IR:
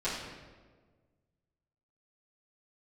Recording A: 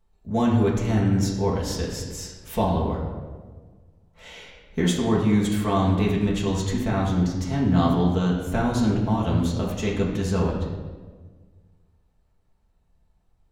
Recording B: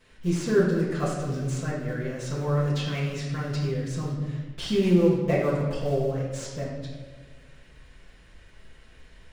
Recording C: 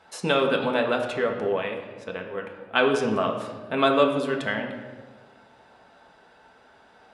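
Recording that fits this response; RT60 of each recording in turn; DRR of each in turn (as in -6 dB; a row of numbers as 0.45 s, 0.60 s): B; 1.5 s, 1.5 s, 1.5 s; -4.5 dB, -12.5 dB, 1.5 dB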